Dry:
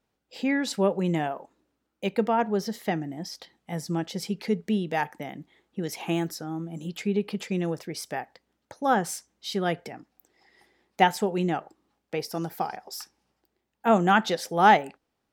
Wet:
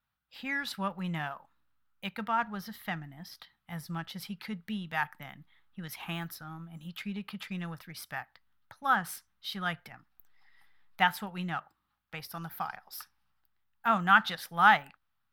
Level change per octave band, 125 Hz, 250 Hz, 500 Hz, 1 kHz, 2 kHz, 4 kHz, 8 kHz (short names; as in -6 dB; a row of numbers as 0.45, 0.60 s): -7.5, -10.5, -16.0, -4.5, +0.5, -3.0, -10.0 dB